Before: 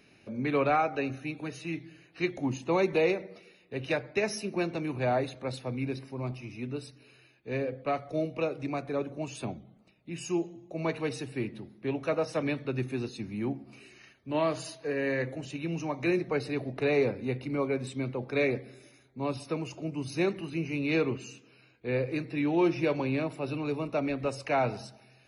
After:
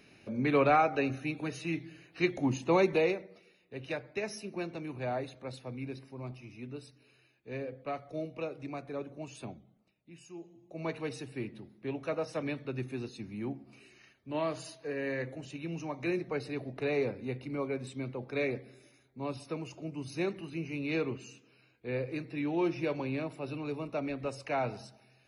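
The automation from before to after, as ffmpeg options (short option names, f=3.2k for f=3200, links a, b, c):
-af "volume=14dB,afade=t=out:st=2.76:d=0.51:silence=0.398107,afade=t=out:st=9.43:d=0.91:silence=0.281838,afade=t=in:st=10.34:d=0.54:silence=0.223872"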